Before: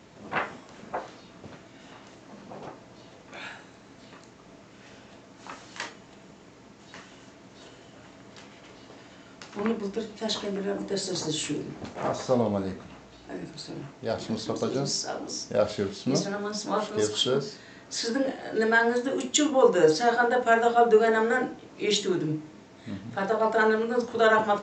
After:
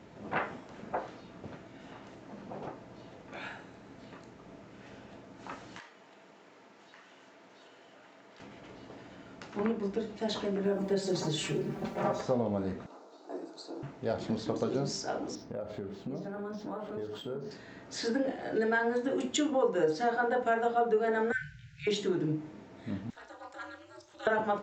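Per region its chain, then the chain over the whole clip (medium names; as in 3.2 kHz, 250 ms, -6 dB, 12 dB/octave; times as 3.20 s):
5.79–8.40 s: frequency weighting A + compression 2.5:1, threshold -51 dBFS
10.65–12.21 s: comb 5.2 ms, depth 98% + word length cut 10-bit, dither triangular
12.86–13.83 s: high-pass 320 Hz 24 dB/octave + high-order bell 2.3 kHz -12.5 dB 1.2 oct
15.35–17.51 s: treble shelf 2.1 kHz -8.5 dB + compression 5:1, threshold -35 dBFS + decimation joined by straight lines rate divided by 4×
21.32–21.87 s: brick-wall FIR band-stop 160–1400 Hz + bass shelf 350 Hz +8.5 dB
23.10–24.27 s: differentiator + upward compressor, threshold -45 dBFS + ring modulator 130 Hz
whole clip: treble shelf 3.3 kHz -11.5 dB; band-stop 1.1 kHz, Q 18; compression 2.5:1, threshold -28 dBFS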